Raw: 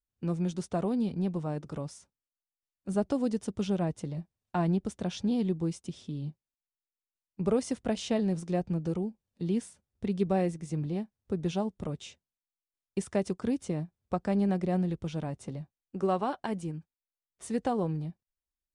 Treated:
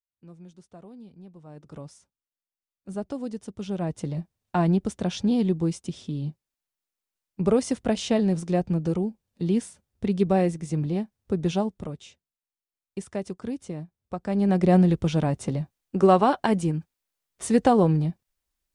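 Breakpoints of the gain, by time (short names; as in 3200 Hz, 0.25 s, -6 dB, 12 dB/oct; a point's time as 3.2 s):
1.35 s -16 dB
1.76 s -3.5 dB
3.59 s -3.5 dB
4.06 s +6 dB
11.59 s +6 dB
12.03 s -2 dB
14.17 s -2 dB
14.68 s +11 dB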